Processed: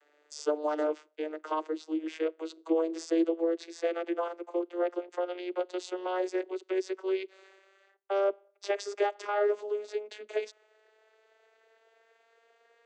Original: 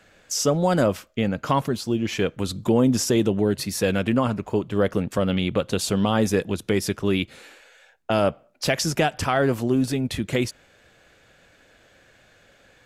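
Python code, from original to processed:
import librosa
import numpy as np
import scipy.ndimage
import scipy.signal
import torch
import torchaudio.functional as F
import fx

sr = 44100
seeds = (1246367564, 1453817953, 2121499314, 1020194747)

y = fx.vocoder_glide(x, sr, note=50, semitones=8)
y = scipy.signal.sosfilt(scipy.signal.butter(12, 320.0, 'highpass', fs=sr, output='sos'), y)
y = F.gain(torch.from_numpy(y), -2.0).numpy()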